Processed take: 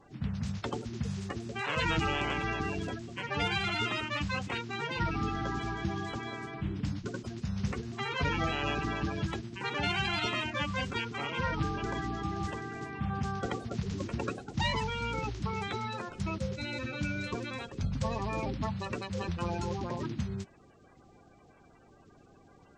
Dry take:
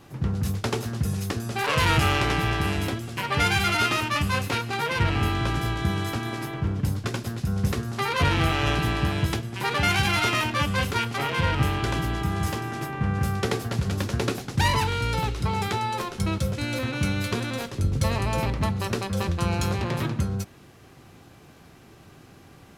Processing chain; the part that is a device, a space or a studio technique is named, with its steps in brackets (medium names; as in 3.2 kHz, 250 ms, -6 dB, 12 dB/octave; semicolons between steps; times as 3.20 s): clip after many re-uploads (low-pass 6.5 kHz 24 dB/octave; coarse spectral quantiser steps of 30 dB); trim -8 dB